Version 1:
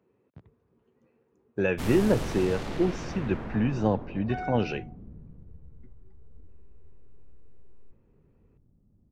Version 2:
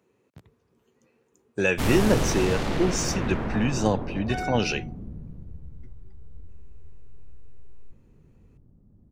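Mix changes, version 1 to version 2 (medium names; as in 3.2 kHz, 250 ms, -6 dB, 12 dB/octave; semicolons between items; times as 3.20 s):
speech: remove tape spacing loss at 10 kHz 33 dB; background +7.5 dB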